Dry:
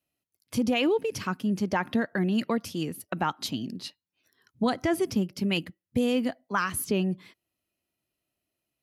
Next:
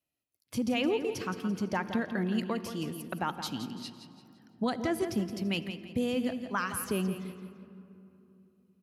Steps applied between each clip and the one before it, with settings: feedback echo 0.169 s, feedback 36%, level -10 dB; on a send at -14 dB: reverb RT60 3.1 s, pre-delay 46 ms; on the sum: gain -5 dB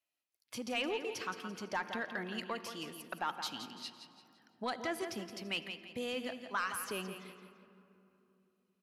low shelf 370 Hz -8.5 dB; overdrive pedal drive 11 dB, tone 5400 Hz, clips at -18.5 dBFS; gain -5.5 dB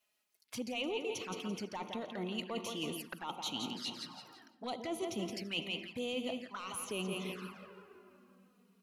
reverse; compressor 5:1, threshold -48 dBFS, peak gain reduction 15.5 dB; reverse; envelope flanger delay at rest 4.9 ms, full sweep at -47.5 dBFS; gain +13 dB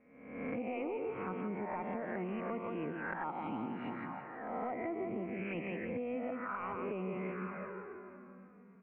spectral swells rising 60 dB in 0.89 s; Chebyshev low-pass 2300 Hz, order 6; compressor, threshold -44 dBFS, peak gain reduction 11 dB; gain +8 dB

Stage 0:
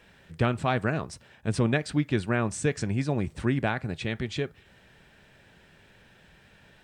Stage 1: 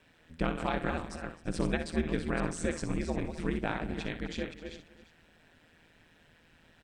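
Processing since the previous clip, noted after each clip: reverse delay 0.267 s, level -7.5 dB; on a send: tapped delay 60/260/341 ms -10.5/-18/-16 dB; on the sum: ring modulator 81 Hz; gain -3.5 dB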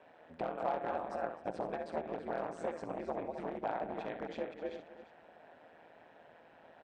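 one-sided fold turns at -28 dBFS; compressor 5:1, threshold -39 dBFS, peak gain reduction 13 dB; band-pass 690 Hz, Q 2.3; gain +13.5 dB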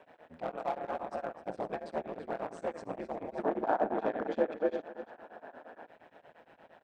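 in parallel at -4.5 dB: hard clip -35.5 dBFS, distortion -9 dB; on the sum: spectral gain 3.39–5.87, 210–1800 Hz +8 dB; beating tremolo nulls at 8.6 Hz

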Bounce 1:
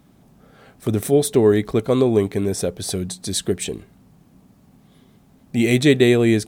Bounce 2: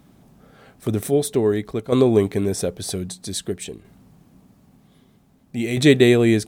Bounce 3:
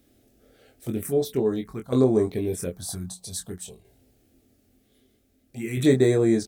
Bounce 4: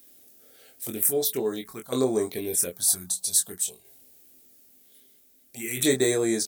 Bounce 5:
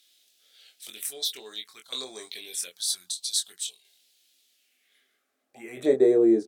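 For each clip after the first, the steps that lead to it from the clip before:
tremolo saw down 0.52 Hz, depth 65%; gain +1.5 dB
high shelf 11000 Hz +5.5 dB; envelope phaser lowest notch 160 Hz, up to 2900 Hz, full sweep at -14 dBFS; doubler 23 ms -4.5 dB; gain -5.5 dB
RIAA curve recording
band-pass sweep 3600 Hz -> 360 Hz, 4.46–6.23; gain +7.5 dB

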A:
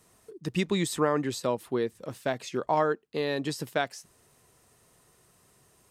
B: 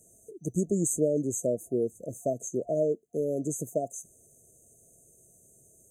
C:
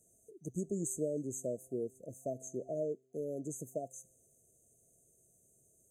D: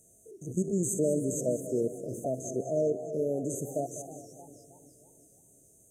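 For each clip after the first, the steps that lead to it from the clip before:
FFT band-reject 700–6100 Hz; bell 4300 Hz +10.5 dB 2.7 oct
resonator 130 Hz, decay 1.3 s, harmonics all, mix 40%; gain -5.5 dB
stepped spectrum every 50 ms; split-band echo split 390 Hz, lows 0.354 s, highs 0.199 s, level -12 dB; warbling echo 0.308 s, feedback 49%, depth 194 cents, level -17 dB; gain +9 dB

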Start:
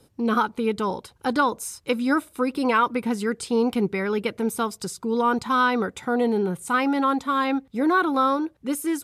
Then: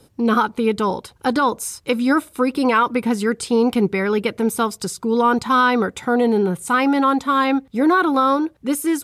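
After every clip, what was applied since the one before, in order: maximiser +11.5 dB; gain -6 dB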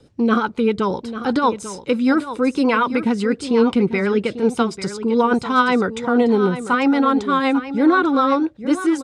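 Bessel low-pass 6100 Hz, order 6; rotary speaker horn 8 Hz; echo 0.844 s -12 dB; gain +2.5 dB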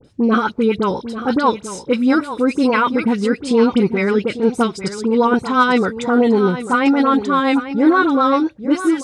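dispersion highs, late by 47 ms, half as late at 1800 Hz; gain +2 dB

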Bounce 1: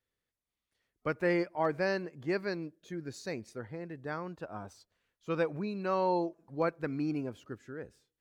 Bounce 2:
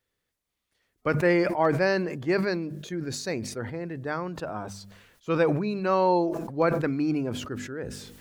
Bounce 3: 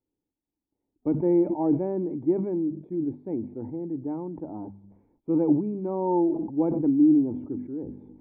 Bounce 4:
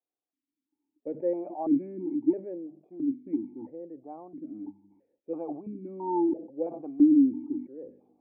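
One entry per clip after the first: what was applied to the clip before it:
de-hum 49.64 Hz, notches 5; sustainer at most 49 dB/s; gain +7 dB
vocal tract filter u; gain +9 dB
vowel sequencer 3 Hz; gain +5 dB

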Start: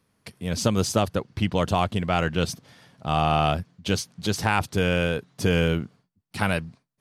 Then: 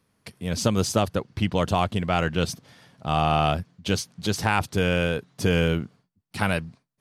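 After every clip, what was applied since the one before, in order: nothing audible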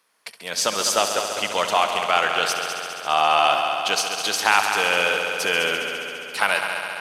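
HPF 770 Hz 12 dB/oct; multi-head echo 68 ms, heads all three, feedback 73%, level -12 dB; gain +7 dB

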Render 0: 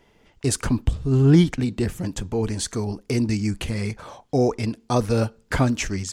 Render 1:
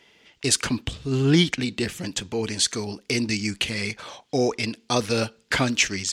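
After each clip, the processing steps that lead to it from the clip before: weighting filter D; gain -1.5 dB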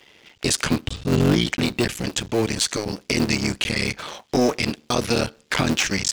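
cycle switcher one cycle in 3, muted; limiter -15.5 dBFS, peak gain reduction 9.5 dB; gain +6.5 dB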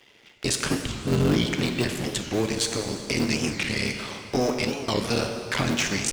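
plate-style reverb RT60 2.7 s, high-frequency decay 0.8×, DRR 4 dB; record warp 45 rpm, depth 250 cents; gain -4.5 dB

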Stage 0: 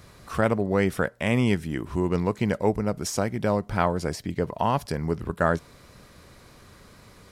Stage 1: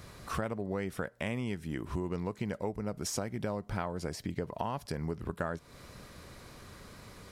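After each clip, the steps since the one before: compressor 6:1, threshold -32 dBFS, peak gain reduction 14.5 dB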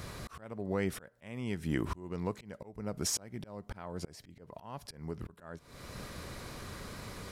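auto swell 0.603 s; gain +6 dB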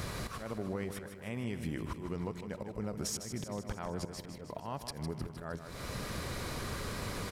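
compressor 12:1, threshold -40 dBFS, peak gain reduction 14.5 dB; on a send: feedback echo 0.155 s, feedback 60%, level -9 dB; on the sum: gain +6 dB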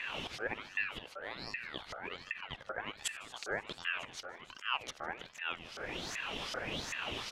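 LFO band-pass saw up 2.6 Hz 370–4500 Hz; ring modulator with a swept carrier 1600 Hz, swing 40%, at 1.3 Hz; gain +12.5 dB

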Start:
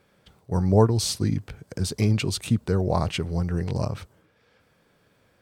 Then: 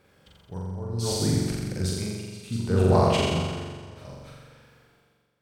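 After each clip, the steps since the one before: reverse delay 0.188 s, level -8 dB; tremolo 0.66 Hz, depth 95%; on a send: flutter echo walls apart 7.4 m, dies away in 1.5 s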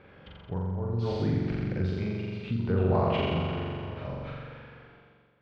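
compressor 2:1, threshold -40 dBFS, peak gain reduction 13.5 dB; LPF 3000 Hz 24 dB/oct; gain +7.5 dB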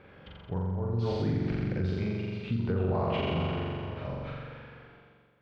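limiter -20.5 dBFS, peak gain reduction 5.5 dB

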